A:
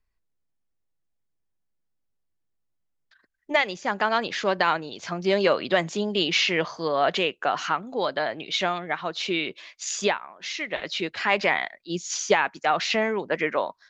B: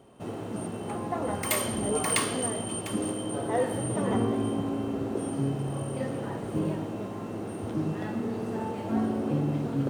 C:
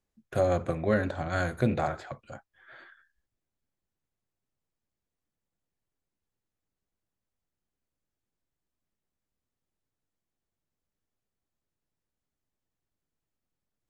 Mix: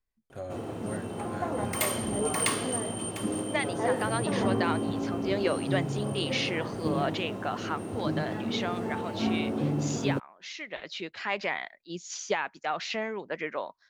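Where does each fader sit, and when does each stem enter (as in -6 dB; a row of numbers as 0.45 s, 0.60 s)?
-8.5 dB, -1.0 dB, -13.5 dB; 0.00 s, 0.30 s, 0.00 s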